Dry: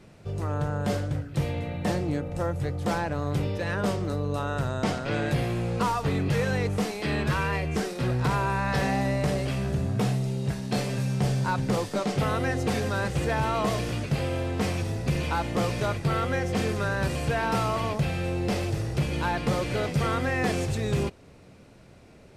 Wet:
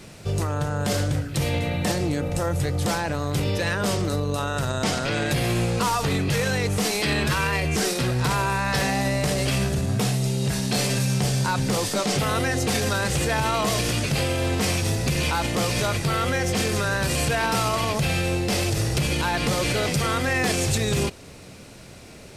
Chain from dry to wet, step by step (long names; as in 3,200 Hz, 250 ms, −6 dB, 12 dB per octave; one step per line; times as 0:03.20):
brickwall limiter −23.5 dBFS, peak gain reduction 7 dB
high-shelf EQ 2,900 Hz +12 dB
level +7 dB